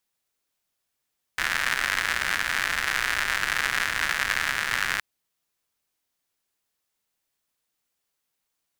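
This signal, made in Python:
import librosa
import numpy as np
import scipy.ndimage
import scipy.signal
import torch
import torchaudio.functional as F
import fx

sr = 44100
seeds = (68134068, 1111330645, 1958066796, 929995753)

y = fx.rain(sr, seeds[0], length_s=3.62, drops_per_s=150.0, hz=1700.0, bed_db=-15.5)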